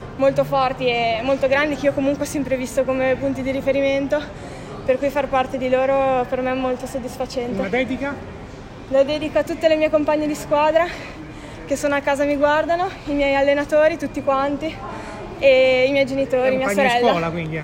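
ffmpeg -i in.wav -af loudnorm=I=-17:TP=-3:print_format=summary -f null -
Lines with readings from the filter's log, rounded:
Input Integrated:    -19.2 LUFS
Input True Peak:      -4.4 dBTP
Input LRA:             3.2 LU
Input Threshold:     -29.6 LUFS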